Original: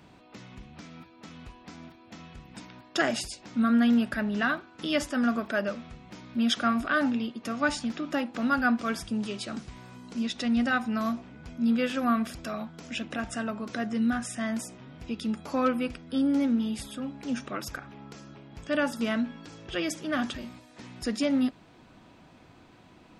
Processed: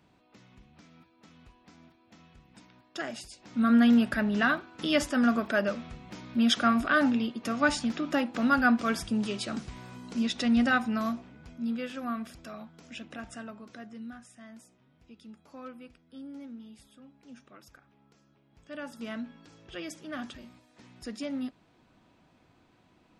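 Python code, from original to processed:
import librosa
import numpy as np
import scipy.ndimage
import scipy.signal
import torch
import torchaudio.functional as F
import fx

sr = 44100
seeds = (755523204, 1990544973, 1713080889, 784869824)

y = fx.gain(x, sr, db=fx.line((3.26, -10.0), (3.72, 1.5), (10.71, 1.5), (11.84, -8.5), (13.3, -8.5), (14.3, -18.5), (18.4, -18.5), (19.13, -9.0)))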